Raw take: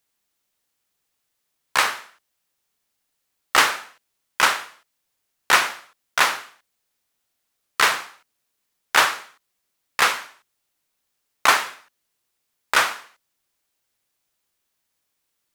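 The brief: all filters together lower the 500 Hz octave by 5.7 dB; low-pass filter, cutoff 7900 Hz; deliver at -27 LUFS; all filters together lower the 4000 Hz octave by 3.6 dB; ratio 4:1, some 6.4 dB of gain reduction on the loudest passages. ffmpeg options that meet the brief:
-af "lowpass=7.9k,equalizer=f=500:t=o:g=-7.5,equalizer=f=4k:t=o:g=-4.5,acompressor=threshold=-20dB:ratio=4,volume=0.5dB"

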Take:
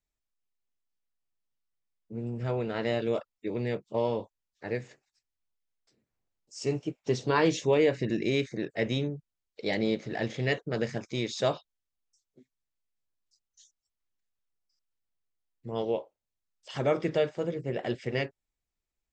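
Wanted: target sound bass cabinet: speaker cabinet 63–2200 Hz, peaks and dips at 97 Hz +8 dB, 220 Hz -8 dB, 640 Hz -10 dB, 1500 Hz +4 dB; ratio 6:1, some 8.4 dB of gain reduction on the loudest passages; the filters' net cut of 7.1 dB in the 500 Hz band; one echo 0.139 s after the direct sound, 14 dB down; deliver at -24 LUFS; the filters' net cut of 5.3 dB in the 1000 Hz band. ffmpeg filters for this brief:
-af "equalizer=f=500:t=o:g=-5,equalizer=f=1k:t=o:g=-3.5,acompressor=threshold=-32dB:ratio=6,highpass=f=63:w=0.5412,highpass=f=63:w=1.3066,equalizer=f=97:t=q:w=4:g=8,equalizer=f=220:t=q:w=4:g=-8,equalizer=f=640:t=q:w=4:g=-10,equalizer=f=1.5k:t=q:w=4:g=4,lowpass=f=2.2k:w=0.5412,lowpass=f=2.2k:w=1.3066,aecho=1:1:139:0.2,volume=16dB"

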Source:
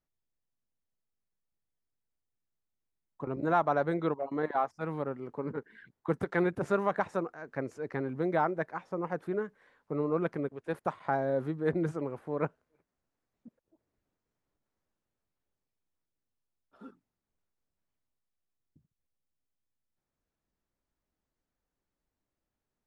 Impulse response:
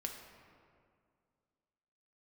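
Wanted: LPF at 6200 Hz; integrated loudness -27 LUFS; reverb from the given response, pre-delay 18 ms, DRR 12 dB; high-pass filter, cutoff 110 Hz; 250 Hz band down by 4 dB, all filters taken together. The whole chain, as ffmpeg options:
-filter_complex "[0:a]highpass=110,lowpass=6.2k,equalizer=f=250:t=o:g=-6,asplit=2[a][b];[1:a]atrim=start_sample=2205,adelay=18[c];[b][c]afir=irnorm=-1:irlink=0,volume=-11dB[d];[a][d]amix=inputs=2:normalize=0,volume=7dB"

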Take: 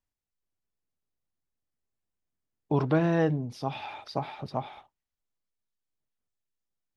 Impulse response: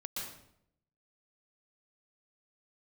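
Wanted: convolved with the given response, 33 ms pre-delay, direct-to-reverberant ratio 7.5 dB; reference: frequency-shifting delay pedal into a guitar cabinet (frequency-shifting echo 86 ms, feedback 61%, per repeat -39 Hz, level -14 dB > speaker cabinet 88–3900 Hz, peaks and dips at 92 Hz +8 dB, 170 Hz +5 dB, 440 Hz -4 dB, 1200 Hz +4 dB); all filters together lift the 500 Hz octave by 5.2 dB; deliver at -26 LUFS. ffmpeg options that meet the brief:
-filter_complex "[0:a]equalizer=f=500:t=o:g=8.5,asplit=2[a][b];[1:a]atrim=start_sample=2205,adelay=33[c];[b][c]afir=irnorm=-1:irlink=0,volume=-8dB[d];[a][d]amix=inputs=2:normalize=0,asplit=8[e][f][g][h][i][j][k][l];[f]adelay=86,afreqshift=-39,volume=-14dB[m];[g]adelay=172,afreqshift=-78,volume=-18.3dB[n];[h]adelay=258,afreqshift=-117,volume=-22.6dB[o];[i]adelay=344,afreqshift=-156,volume=-26.9dB[p];[j]adelay=430,afreqshift=-195,volume=-31.2dB[q];[k]adelay=516,afreqshift=-234,volume=-35.5dB[r];[l]adelay=602,afreqshift=-273,volume=-39.8dB[s];[e][m][n][o][p][q][r][s]amix=inputs=8:normalize=0,highpass=88,equalizer=f=92:t=q:w=4:g=8,equalizer=f=170:t=q:w=4:g=5,equalizer=f=440:t=q:w=4:g=-4,equalizer=f=1.2k:t=q:w=4:g=4,lowpass=f=3.9k:w=0.5412,lowpass=f=3.9k:w=1.3066,volume=-1dB"

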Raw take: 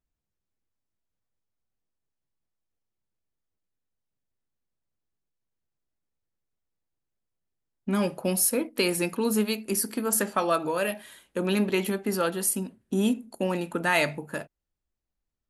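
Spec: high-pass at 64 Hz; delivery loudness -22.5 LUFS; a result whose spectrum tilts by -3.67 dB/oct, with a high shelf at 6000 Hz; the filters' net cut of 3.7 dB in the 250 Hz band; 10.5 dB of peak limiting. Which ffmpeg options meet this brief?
-af "highpass=64,equalizer=f=250:t=o:g=-5,highshelf=f=6k:g=3.5,volume=8dB,alimiter=limit=-11dB:level=0:latency=1"

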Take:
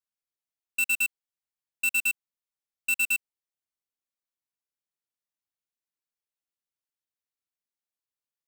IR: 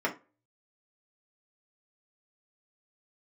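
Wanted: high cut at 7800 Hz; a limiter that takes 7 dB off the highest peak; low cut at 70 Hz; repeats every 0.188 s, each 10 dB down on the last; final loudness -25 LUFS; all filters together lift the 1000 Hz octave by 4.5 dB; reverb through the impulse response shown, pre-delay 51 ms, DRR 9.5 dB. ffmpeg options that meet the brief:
-filter_complex "[0:a]highpass=70,lowpass=7.8k,equalizer=f=1k:t=o:g=6,alimiter=level_in=4.5dB:limit=-24dB:level=0:latency=1,volume=-4.5dB,aecho=1:1:188|376|564|752:0.316|0.101|0.0324|0.0104,asplit=2[a][b];[1:a]atrim=start_sample=2205,adelay=51[c];[b][c]afir=irnorm=-1:irlink=0,volume=-19dB[d];[a][d]amix=inputs=2:normalize=0,volume=9dB"

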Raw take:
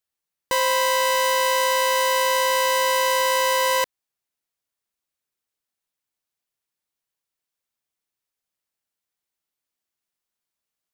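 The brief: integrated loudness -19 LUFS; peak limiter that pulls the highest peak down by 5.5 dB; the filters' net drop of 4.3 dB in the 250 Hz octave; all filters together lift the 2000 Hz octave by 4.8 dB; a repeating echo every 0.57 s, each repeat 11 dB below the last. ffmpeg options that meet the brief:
-af "equalizer=f=250:t=o:g=-7,equalizer=f=2k:t=o:g=5.5,alimiter=limit=-14dB:level=0:latency=1,aecho=1:1:570|1140|1710:0.282|0.0789|0.0221,volume=2.5dB"

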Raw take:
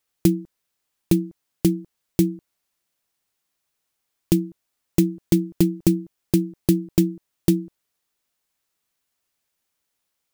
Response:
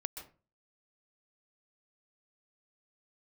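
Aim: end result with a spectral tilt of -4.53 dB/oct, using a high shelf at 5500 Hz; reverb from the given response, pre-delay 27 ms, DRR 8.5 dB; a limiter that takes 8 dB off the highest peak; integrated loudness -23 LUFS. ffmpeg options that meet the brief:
-filter_complex "[0:a]highshelf=f=5.5k:g=-3,alimiter=limit=-12dB:level=0:latency=1,asplit=2[a][b];[1:a]atrim=start_sample=2205,adelay=27[c];[b][c]afir=irnorm=-1:irlink=0,volume=-7.5dB[d];[a][d]amix=inputs=2:normalize=0,volume=2.5dB"

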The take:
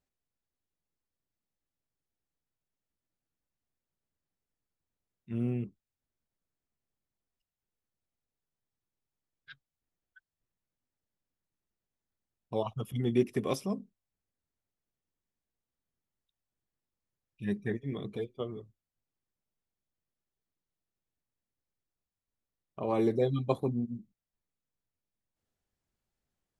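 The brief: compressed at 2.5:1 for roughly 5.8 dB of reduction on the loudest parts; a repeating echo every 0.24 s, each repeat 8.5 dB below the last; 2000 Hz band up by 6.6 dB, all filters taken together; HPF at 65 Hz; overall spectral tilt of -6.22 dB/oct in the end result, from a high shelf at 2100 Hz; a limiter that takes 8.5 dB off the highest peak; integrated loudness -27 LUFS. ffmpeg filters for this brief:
-af "highpass=65,equalizer=f=2k:t=o:g=4.5,highshelf=f=2.1k:g=6,acompressor=threshold=-30dB:ratio=2.5,alimiter=level_in=2dB:limit=-24dB:level=0:latency=1,volume=-2dB,aecho=1:1:240|480|720|960:0.376|0.143|0.0543|0.0206,volume=11dB"

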